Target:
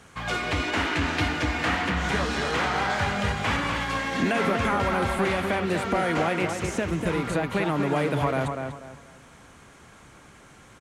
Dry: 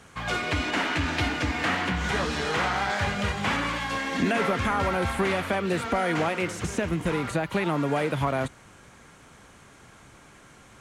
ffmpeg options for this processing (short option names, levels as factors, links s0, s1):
-filter_complex "[0:a]asplit=2[s0][s1];[s1]adelay=244,lowpass=f=2500:p=1,volume=0.562,asplit=2[s2][s3];[s3]adelay=244,lowpass=f=2500:p=1,volume=0.3,asplit=2[s4][s5];[s5]adelay=244,lowpass=f=2500:p=1,volume=0.3,asplit=2[s6][s7];[s7]adelay=244,lowpass=f=2500:p=1,volume=0.3[s8];[s0][s2][s4][s6][s8]amix=inputs=5:normalize=0"